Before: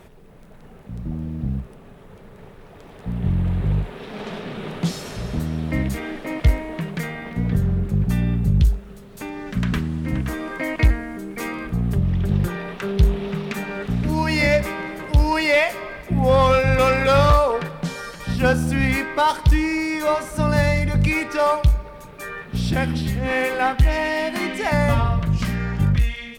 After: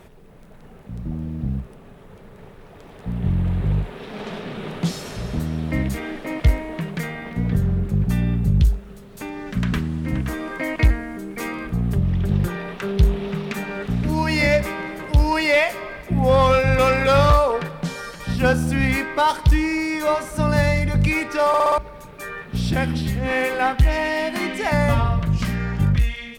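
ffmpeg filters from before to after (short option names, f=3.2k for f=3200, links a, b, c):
-filter_complex "[0:a]asplit=6[a][b][c][d][e][f];[a]atrim=end=21.542[g];[b]atrim=start=21.478:end=21.542[h];[c]atrim=start=21.478:end=21.542[i];[d]atrim=start=21.478:end=21.542[j];[e]atrim=start=21.478:end=21.542[k];[f]atrim=start=21.778[l];[g][h]acrossfade=d=0.004:c1=hsin:c2=hsin[m];[m][i]acrossfade=d=0.004:c1=hsin:c2=hsin[n];[n][j]acrossfade=d=0.004:c1=hsin:c2=hsin[o];[o][k]acrossfade=d=0.004:c1=hsin:c2=hsin[p];[p][l]acrossfade=d=0.004:c1=hsin:c2=hsin"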